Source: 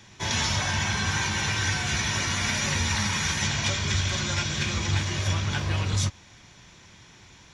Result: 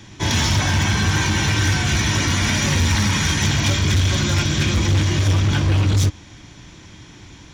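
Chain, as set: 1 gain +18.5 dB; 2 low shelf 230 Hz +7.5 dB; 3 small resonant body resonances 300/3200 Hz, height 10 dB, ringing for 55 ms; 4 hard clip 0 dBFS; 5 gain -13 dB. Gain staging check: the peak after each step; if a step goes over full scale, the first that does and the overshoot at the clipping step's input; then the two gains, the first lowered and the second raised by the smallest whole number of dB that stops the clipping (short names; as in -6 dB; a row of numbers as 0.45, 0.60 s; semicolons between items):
+6.0, +9.5, +10.0, 0.0, -13.0 dBFS; step 1, 10.0 dB; step 1 +8.5 dB, step 5 -3 dB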